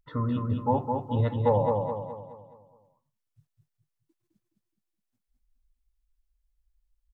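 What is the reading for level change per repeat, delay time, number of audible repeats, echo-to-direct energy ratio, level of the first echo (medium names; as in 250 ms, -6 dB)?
-7.0 dB, 210 ms, 5, -3.0 dB, -4.0 dB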